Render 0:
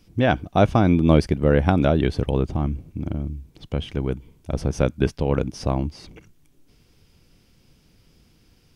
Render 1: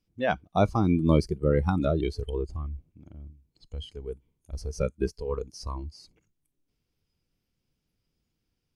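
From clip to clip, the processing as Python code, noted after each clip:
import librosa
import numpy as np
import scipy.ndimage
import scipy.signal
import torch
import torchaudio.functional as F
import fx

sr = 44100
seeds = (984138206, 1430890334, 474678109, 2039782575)

y = fx.noise_reduce_blind(x, sr, reduce_db=17)
y = F.gain(torch.from_numpy(y), -5.0).numpy()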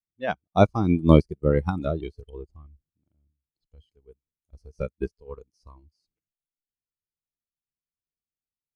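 y = fx.upward_expand(x, sr, threshold_db=-40.0, expansion=2.5)
y = F.gain(torch.from_numpy(y), 7.5).numpy()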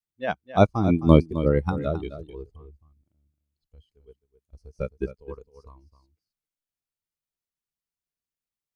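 y = x + 10.0 ** (-12.5 / 20.0) * np.pad(x, (int(263 * sr / 1000.0), 0))[:len(x)]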